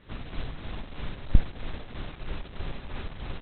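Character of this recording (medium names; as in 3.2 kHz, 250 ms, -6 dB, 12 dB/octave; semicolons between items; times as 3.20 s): tremolo triangle 3.1 Hz, depth 55%; Opus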